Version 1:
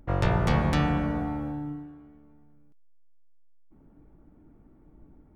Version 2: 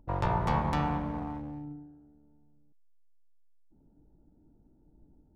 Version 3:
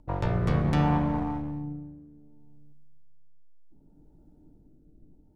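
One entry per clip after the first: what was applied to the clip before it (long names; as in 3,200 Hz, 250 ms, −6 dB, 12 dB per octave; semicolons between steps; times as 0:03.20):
adaptive Wiener filter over 41 samples; parametric band 950 Hz +13 dB 0.57 octaves; level −6.5 dB
rotating-speaker cabinet horn 0.65 Hz; rectangular room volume 1,100 cubic metres, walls mixed, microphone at 0.44 metres; level +5.5 dB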